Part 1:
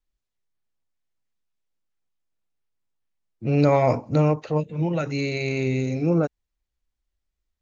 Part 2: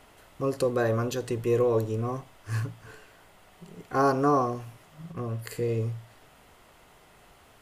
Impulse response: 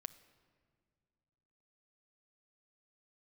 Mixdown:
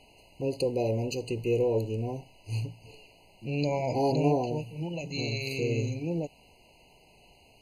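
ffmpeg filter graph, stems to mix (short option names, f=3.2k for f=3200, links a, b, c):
-filter_complex "[0:a]volume=-10.5dB[a];[1:a]highshelf=f=4.8k:g=-11.5,volume=-2dB[b];[a][b]amix=inputs=2:normalize=0,highshelf=f=2.4k:t=q:w=3:g=8,afftfilt=real='re*eq(mod(floor(b*sr/1024/1000),2),0)':imag='im*eq(mod(floor(b*sr/1024/1000),2),0)':win_size=1024:overlap=0.75"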